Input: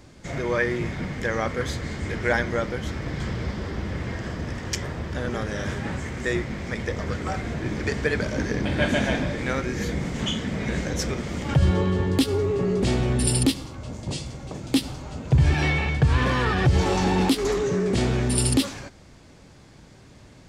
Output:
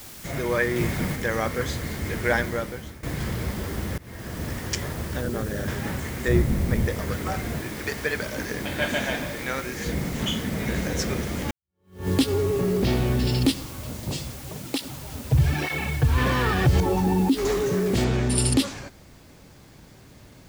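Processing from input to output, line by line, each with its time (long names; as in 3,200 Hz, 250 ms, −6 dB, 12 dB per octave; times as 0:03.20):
0:00.76–0:01.16: clip gain +3.5 dB
0:02.37–0:03.03: fade out, to −16 dB
0:03.98–0:04.46: fade in, from −22.5 dB
0:05.21–0:05.68: spectral envelope exaggerated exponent 1.5
0:06.28–0:06.88: spectral tilt −3 dB per octave
0:07.61–0:09.86: low-shelf EQ 420 Hz −8.5 dB
0:10.51–0:10.98: delay throw 260 ms, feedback 65%, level −8 dB
0:11.51–0:12.08: fade in exponential
0:12.73–0:13.45: Butterworth low-pass 5,800 Hz
0:14.33–0:16.18: through-zero flanger with one copy inverted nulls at 1.1 Hz, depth 6.7 ms
0:16.80–0:17.37: expanding power law on the bin magnitudes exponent 1.6
0:18.04: noise floor change −43 dB −62 dB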